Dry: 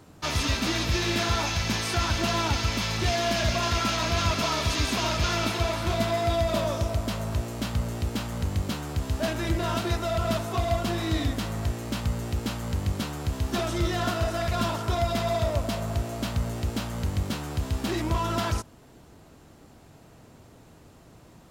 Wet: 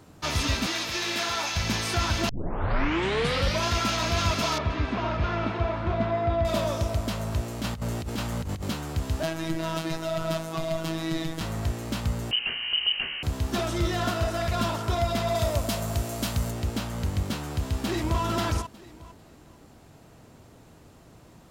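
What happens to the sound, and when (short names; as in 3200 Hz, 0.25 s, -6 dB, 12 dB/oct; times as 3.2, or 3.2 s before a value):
0.66–1.56 HPF 620 Hz 6 dB/oct
2.29 tape start 1.38 s
4.58–6.45 LPF 1800 Hz
7.61–8.69 negative-ratio compressor -29 dBFS, ratio -0.5
9.23–11.41 robotiser 162 Hz
12.31–13.23 inverted band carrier 3000 Hz
15.35–16.51 high shelf 5400 Hz +10 dB
17.48–18.21 echo throw 0.45 s, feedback 25%, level -8.5 dB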